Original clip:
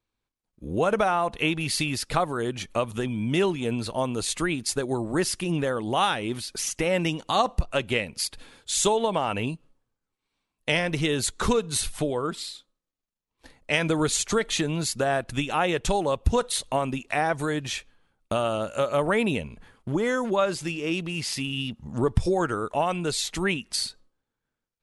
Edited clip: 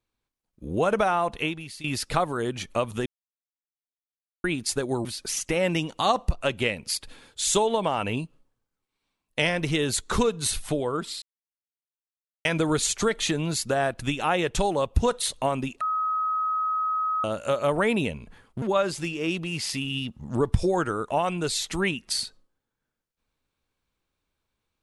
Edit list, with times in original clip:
1.36–1.84 fade out quadratic, to -16.5 dB
3.06–4.44 mute
5.05–6.35 cut
12.52–13.75 mute
17.11–18.54 bleep 1270 Hz -23 dBFS
19.92–20.25 cut

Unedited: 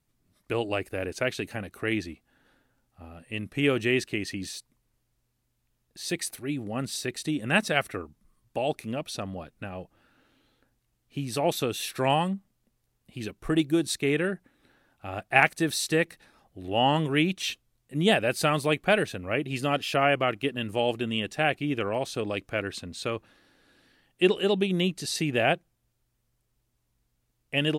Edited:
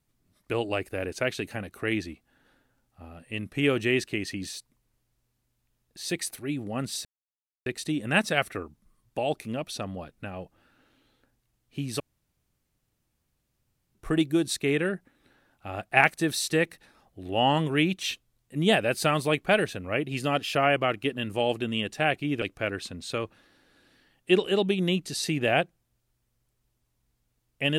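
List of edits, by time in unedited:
7.05 insert silence 0.61 s
11.39–13.34 room tone
21.81–22.34 cut

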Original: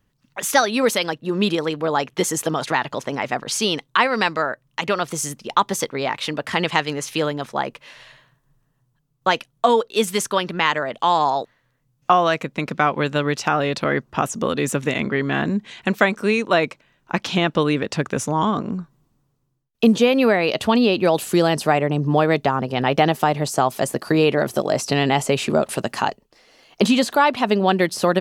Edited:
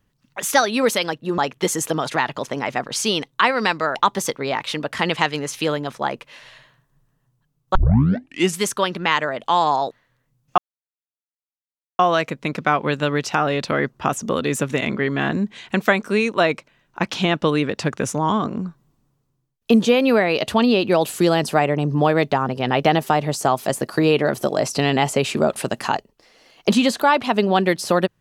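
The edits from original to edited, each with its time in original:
1.38–1.94 cut
4.51–5.49 cut
9.29 tape start 0.85 s
12.12 insert silence 1.41 s

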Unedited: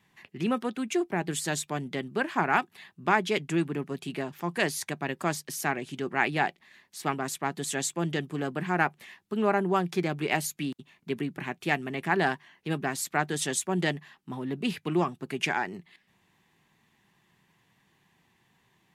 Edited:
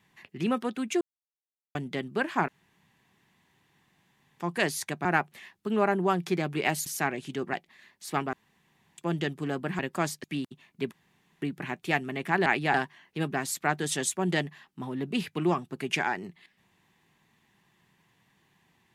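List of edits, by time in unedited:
1.01–1.75 mute
2.48–4.4 room tone
5.05–5.5 swap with 8.71–10.52
6.17–6.45 move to 12.24
7.25–7.9 room tone
11.2 insert room tone 0.50 s

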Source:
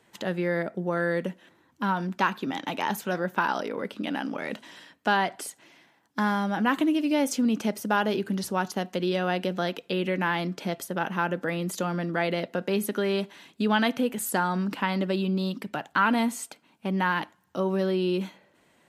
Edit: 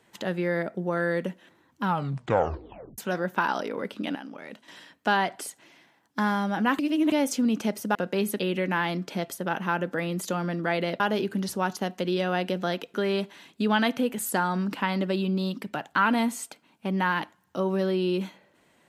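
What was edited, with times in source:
1.83 tape stop 1.15 s
4.15–4.68 gain -9 dB
6.79–7.12 reverse
7.95–9.89 swap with 12.5–12.94

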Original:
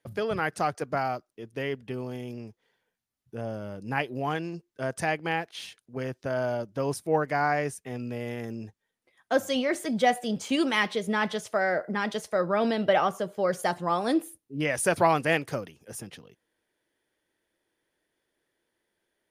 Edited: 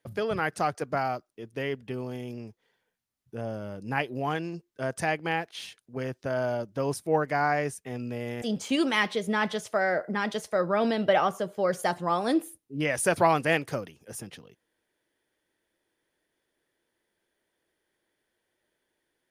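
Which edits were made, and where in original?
8.42–10.22 cut

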